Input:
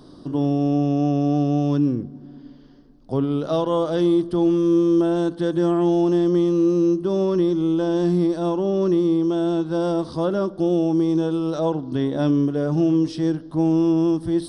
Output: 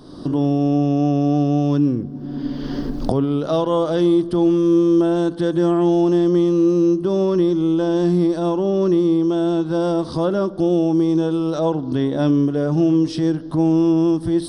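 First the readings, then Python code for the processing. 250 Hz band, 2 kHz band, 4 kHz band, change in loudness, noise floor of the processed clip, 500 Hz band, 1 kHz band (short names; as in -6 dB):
+2.5 dB, +3.0 dB, +3.0 dB, +2.5 dB, -31 dBFS, +2.5 dB, +2.5 dB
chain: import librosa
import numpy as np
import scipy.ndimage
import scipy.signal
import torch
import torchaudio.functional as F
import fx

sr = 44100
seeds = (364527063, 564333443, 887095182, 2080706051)

y = fx.recorder_agc(x, sr, target_db=-17.0, rise_db_per_s=32.0, max_gain_db=30)
y = y * 10.0 ** (2.5 / 20.0)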